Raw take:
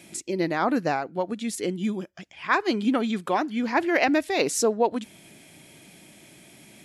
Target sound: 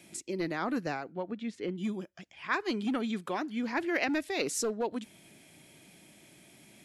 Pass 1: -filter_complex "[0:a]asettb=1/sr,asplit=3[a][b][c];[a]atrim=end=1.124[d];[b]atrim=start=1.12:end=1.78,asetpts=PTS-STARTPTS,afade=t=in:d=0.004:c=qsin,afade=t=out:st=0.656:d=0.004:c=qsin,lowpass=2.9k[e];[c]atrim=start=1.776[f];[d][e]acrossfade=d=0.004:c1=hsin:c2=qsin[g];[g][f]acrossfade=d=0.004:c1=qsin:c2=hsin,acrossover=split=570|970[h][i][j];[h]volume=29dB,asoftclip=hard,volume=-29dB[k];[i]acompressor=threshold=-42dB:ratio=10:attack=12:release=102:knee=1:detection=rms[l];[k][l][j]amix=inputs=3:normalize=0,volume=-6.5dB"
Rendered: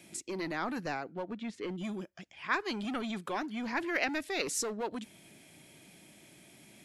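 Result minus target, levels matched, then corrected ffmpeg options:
overloaded stage: distortion +10 dB
-filter_complex "[0:a]asettb=1/sr,asplit=3[a][b][c];[a]atrim=end=1.124[d];[b]atrim=start=1.12:end=1.78,asetpts=PTS-STARTPTS,afade=t=in:d=0.004:c=qsin,afade=t=out:st=0.656:d=0.004:c=qsin,lowpass=2.9k[e];[c]atrim=start=1.776[f];[d][e]acrossfade=d=0.004:c1=hsin:c2=qsin[g];[g][f]acrossfade=d=0.004:c1=qsin:c2=hsin,acrossover=split=570|970[h][i][j];[h]volume=21dB,asoftclip=hard,volume=-21dB[k];[i]acompressor=threshold=-42dB:ratio=10:attack=12:release=102:knee=1:detection=rms[l];[k][l][j]amix=inputs=3:normalize=0,volume=-6.5dB"

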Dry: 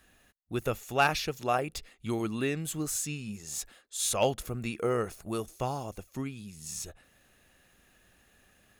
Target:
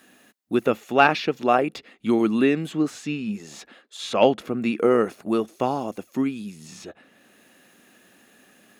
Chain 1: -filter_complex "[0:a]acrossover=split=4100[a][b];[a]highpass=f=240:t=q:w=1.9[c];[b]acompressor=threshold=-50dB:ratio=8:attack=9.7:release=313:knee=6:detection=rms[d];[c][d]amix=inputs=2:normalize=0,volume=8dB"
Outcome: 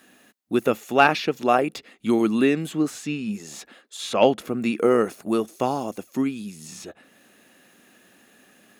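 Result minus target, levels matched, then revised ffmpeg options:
compressor: peak gain reduction -8.5 dB
-filter_complex "[0:a]acrossover=split=4100[a][b];[a]highpass=f=240:t=q:w=1.9[c];[b]acompressor=threshold=-59.5dB:ratio=8:attack=9.7:release=313:knee=6:detection=rms[d];[c][d]amix=inputs=2:normalize=0,volume=8dB"

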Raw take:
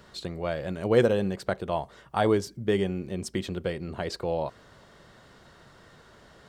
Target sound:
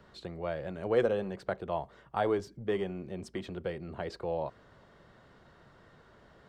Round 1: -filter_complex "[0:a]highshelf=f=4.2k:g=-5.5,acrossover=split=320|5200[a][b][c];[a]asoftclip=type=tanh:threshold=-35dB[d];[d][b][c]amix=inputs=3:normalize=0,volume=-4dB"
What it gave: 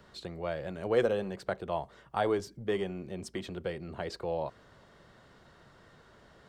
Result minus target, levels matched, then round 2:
8000 Hz band +6.0 dB
-filter_complex "[0:a]highshelf=f=4.2k:g=-14,acrossover=split=320|5200[a][b][c];[a]asoftclip=type=tanh:threshold=-35dB[d];[d][b][c]amix=inputs=3:normalize=0,volume=-4dB"

